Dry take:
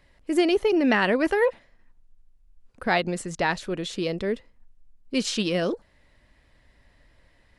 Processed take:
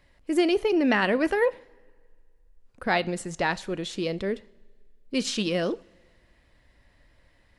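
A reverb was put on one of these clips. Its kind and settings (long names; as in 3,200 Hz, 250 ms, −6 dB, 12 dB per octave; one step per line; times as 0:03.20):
coupled-rooms reverb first 0.46 s, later 2 s, from −18 dB, DRR 17 dB
level −1.5 dB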